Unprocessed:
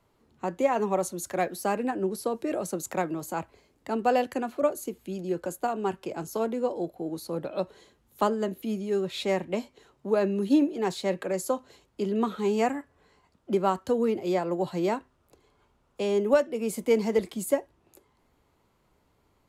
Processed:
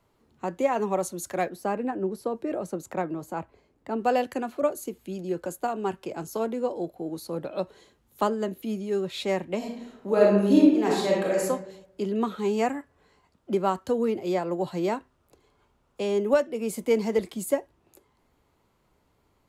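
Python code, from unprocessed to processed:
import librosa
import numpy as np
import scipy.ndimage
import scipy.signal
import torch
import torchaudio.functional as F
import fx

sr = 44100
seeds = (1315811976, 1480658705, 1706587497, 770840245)

y = fx.high_shelf(x, sr, hz=2700.0, db=-11.0, at=(1.49, 4.01))
y = fx.reverb_throw(y, sr, start_s=9.57, length_s=1.86, rt60_s=0.86, drr_db=-3.5)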